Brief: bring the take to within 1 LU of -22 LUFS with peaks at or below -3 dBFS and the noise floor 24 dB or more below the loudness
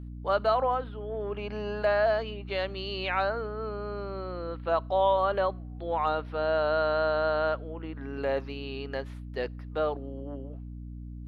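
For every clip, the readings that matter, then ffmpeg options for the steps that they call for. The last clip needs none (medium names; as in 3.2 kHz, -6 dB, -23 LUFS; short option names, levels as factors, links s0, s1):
hum 60 Hz; highest harmonic 300 Hz; hum level -38 dBFS; loudness -30.0 LUFS; peak level -14.5 dBFS; loudness target -22.0 LUFS
-> -af "bandreject=f=60:t=h:w=4,bandreject=f=120:t=h:w=4,bandreject=f=180:t=h:w=4,bandreject=f=240:t=h:w=4,bandreject=f=300:t=h:w=4"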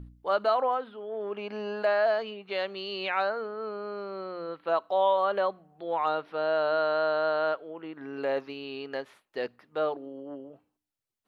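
hum not found; loudness -29.5 LUFS; peak level -15.0 dBFS; loudness target -22.0 LUFS
-> -af "volume=2.37"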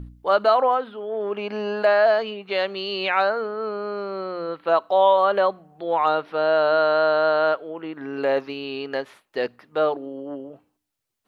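loudness -22.5 LUFS; peak level -7.5 dBFS; noise floor -75 dBFS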